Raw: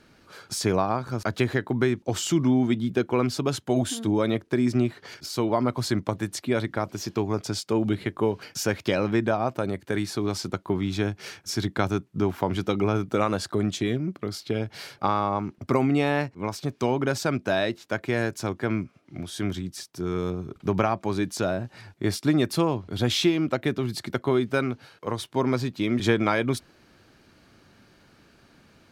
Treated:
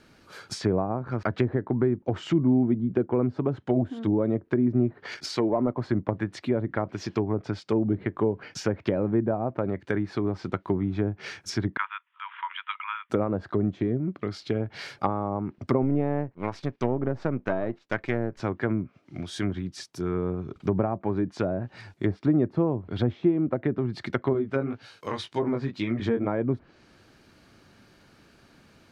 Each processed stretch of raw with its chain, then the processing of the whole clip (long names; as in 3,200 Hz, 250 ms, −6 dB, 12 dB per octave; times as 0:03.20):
0:05.03–0:05.87: low-shelf EQ 150 Hz −11.5 dB + leveller curve on the samples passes 1
0:11.77–0:13.10: Chebyshev band-pass filter 950–3,400 Hz, order 5 + upward compression, threshold −49 dBFS
0:15.82–0:18.40: gain on one half-wave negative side −7 dB + noise gate −48 dBFS, range −9 dB
0:24.33–0:26.27: high-shelf EQ 3,000 Hz +11 dB + chorus effect 1.9 Hz, delay 17.5 ms, depth 4.5 ms
whole clip: treble cut that deepens with the level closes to 630 Hz, closed at −21 dBFS; dynamic equaliser 1,900 Hz, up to +5 dB, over −50 dBFS, Q 1.9